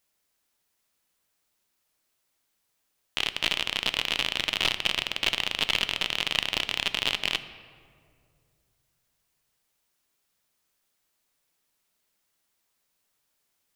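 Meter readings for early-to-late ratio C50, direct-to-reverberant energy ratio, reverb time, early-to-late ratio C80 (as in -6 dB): 13.0 dB, 11.0 dB, 2.2 s, 14.0 dB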